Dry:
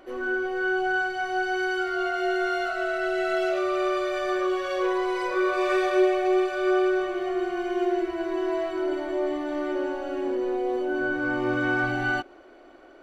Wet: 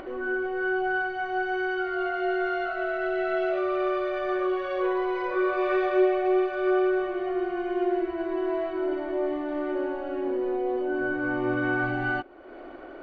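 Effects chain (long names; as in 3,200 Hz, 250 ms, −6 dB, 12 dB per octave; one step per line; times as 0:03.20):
high-frequency loss of the air 330 metres
upward compression, threshold −32 dBFS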